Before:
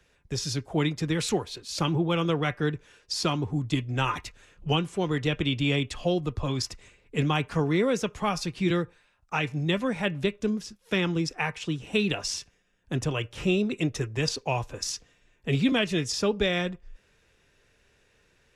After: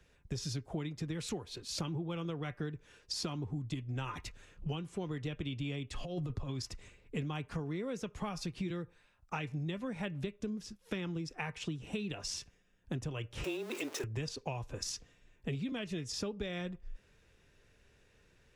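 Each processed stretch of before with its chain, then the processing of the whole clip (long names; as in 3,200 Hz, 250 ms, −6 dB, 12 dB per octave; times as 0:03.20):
0:05.93–0:06.49: comb filter 7.3 ms, depth 31% + compressor whose output falls as the input rises −29 dBFS, ratio −0.5
0:13.44–0:14.04: converter with a step at zero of −31 dBFS + high-pass filter 360 Hz 24 dB per octave + frequency shifter −20 Hz
whole clip: low-shelf EQ 320 Hz +6 dB; downward compressor 12 to 1, threshold −30 dBFS; level −4.5 dB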